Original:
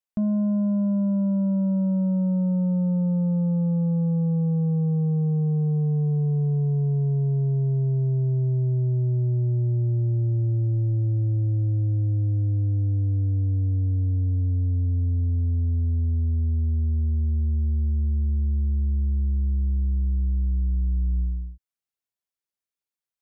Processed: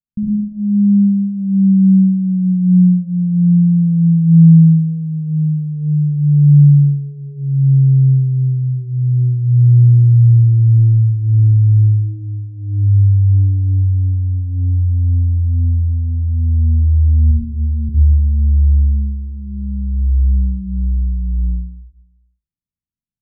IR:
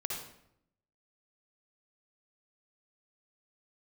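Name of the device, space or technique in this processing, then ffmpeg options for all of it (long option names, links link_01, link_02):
club heard from the street: -filter_complex "[0:a]asettb=1/sr,asplit=3[link_01][link_02][link_03];[link_01]atrim=end=17.314[link_04];[link_02]atrim=start=17.31:end=17.89,asetpts=PTS-STARTPTS,afade=type=in:duration=0.004:curve=qsin,afade=type=out:start_time=0.576:duration=0.004:curve=qsin,highpass=200[link_05];[link_03]atrim=start=17.886[link_06];[link_04][link_05]acrossfade=duration=0.004:curve1=hsin:curve2=qsin[link_07];[link_07][link_06]acrossfade=duration=0.004:curve1=qsin:curve2=hsin,tiltshelf=frequency=770:gain=9.5,alimiter=limit=-16.5dB:level=0:latency=1,lowpass=frequency=240:width=0.5412,lowpass=frequency=240:width=1.3066[link_08];[1:a]atrim=start_sample=2205[link_09];[link_08][link_09]afir=irnorm=-1:irlink=0,volume=4.5dB"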